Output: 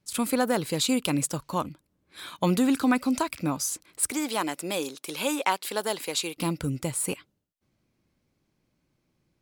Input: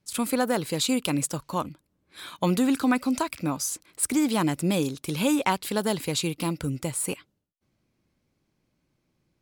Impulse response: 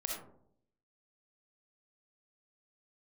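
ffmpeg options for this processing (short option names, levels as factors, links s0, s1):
-filter_complex "[0:a]asettb=1/sr,asplit=3[s0][s1][s2];[s0]atrim=end=4.114[s3];[s1]atrim=start=4.11:end=6.37,asetpts=PTS-STARTPTS,afade=t=in:d=0.004:c=qsin,afade=t=out:st=2.256:d=0.004:c=qsin,highpass=430[s4];[s2]atrim=start=6.366[s5];[s3][s4]acrossfade=d=0.004:c1=hsin:c2=qsin[s6];[s6][s5]acrossfade=d=0.004:c1=qsin:c2=hsin"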